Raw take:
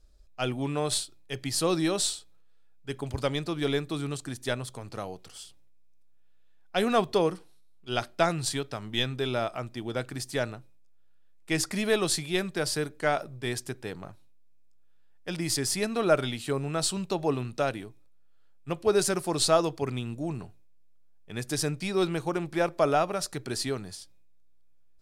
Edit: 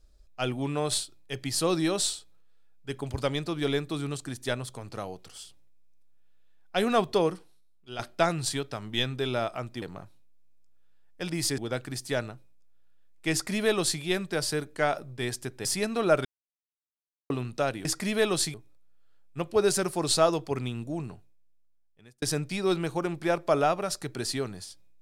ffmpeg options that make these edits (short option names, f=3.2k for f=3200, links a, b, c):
-filter_complex "[0:a]asplit=10[a][b][c][d][e][f][g][h][i][j];[a]atrim=end=7.99,asetpts=PTS-STARTPTS,afade=t=out:st=7.27:d=0.72:silence=0.298538[k];[b]atrim=start=7.99:end=9.822,asetpts=PTS-STARTPTS,afade=t=in:d=0.004:c=hsin:silence=0.298538[l];[c]atrim=start=13.888:end=15.652[m];[d]atrim=start=9.818:end=13.892[n];[e]atrim=start=15.648:end=16.25,asetpts=PTS-STARTPTS,afade=t=out:st=0.598:d=0.004:c=hsin[o];[f]atrim=start=16.25:end=17.3,asetpts=PTS-STARTPTS,volume=0[p];[g]atrim=start=17.3:end=17.852,asetpts=PTS-STARTPTS,afade=t=in:d=0.004:c=hsin[q];[h]atrim=start=11.558:end=12.252[r];[i]atrim=start=17.848:end=21.53,asetpts=PTS-STARTPTS,afade=t=out:st=2.292:d=1.39[s];[j]atrim=start=21.53,asetpts=PTS-STARTPTS,afade=t=in:d=0.004:c=hsin[t];[k][l]concat=n=2:v=0:a=1[u];[u][m]acrossfade=d=0.004:c1=hsin:c2=hsin[v];[v][n]acrossfade=d=0.004:c1=hsin:c2=hsin[w];[o][p][q]concat=n=3:v=0:a=1[x];[w][x]acrossfade=d=0.004:c1=hsin:c2=hsin[y];[y][r]acrossfade=d=0.004:c1=hsin:c2=hsin[z];[s][t]concat=n=2:v=0:a=1[aa];[z][aa]acrossfade=d=0.004:c1=hsin:c2=hsin"